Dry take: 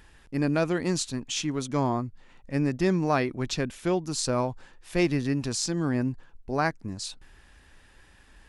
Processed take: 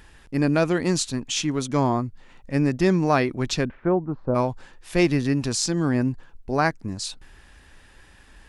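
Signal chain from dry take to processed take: 3.64–4.34 s: low-pass 2 kHz -> 1 kHz 24 dB/octave; trim +4.5 dB

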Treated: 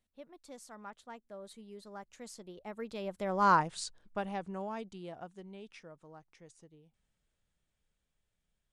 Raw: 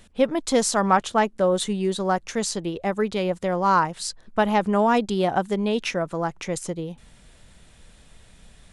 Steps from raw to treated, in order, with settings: Doppler pass-by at 3.55 s, 23 m/s, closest 4.5 m; trim -5.5 dB

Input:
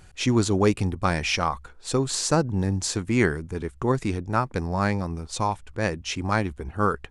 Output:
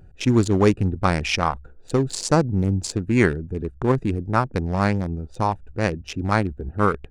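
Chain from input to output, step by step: local Wiener filter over 41 samples; trim +4 dB

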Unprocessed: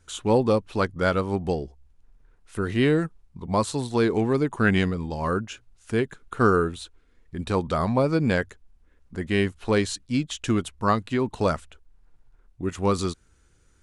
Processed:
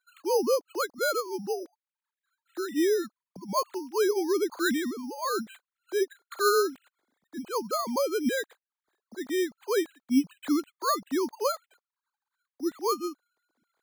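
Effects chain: formants replaced by sine waves; careless resampling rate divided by 8×, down filtered, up hold; trim -4.5 dB

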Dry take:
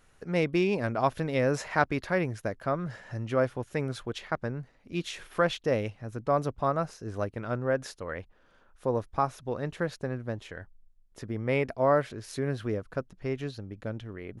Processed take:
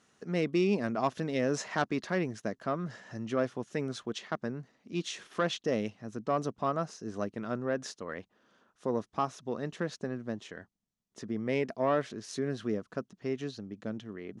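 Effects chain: saturation -15.5 dBFS, distortion -20 dB; cabinet simulation 190–8600 Hz, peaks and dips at 210 Hz +6 dB, 540 Hz -5 dB, 860 Hz -4 dB, 1.5 kHz -4 dB, 2.3 kHz -5 dB, 6.1 kHz +4 dB

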